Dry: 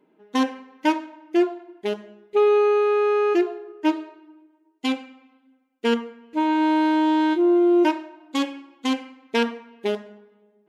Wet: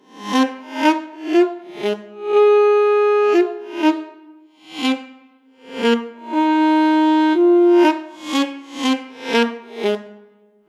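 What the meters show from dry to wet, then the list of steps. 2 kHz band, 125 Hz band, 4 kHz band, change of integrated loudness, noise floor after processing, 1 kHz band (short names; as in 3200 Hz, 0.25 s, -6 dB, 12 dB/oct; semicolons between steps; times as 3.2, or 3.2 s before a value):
+6.0 dB, n/a, +6.5 dB, +5.5 dB, -53 dBFS, +5.5 dB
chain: spectral swells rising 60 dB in 0.48 s; gain +5 dB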